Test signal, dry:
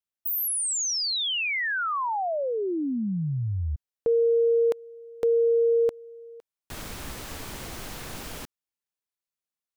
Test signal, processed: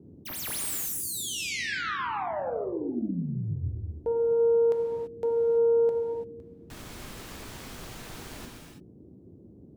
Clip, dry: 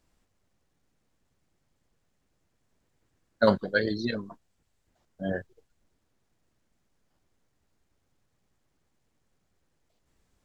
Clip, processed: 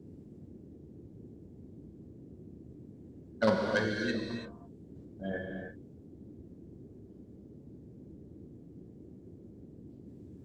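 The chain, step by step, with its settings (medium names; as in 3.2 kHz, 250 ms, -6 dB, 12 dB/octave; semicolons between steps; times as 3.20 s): self-modulated delay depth 0.12 ms; gated-style reverb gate 360 ms flat, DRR 0 dB; band noise 63–360 Hz -44 dBFS; trim -6.5 dB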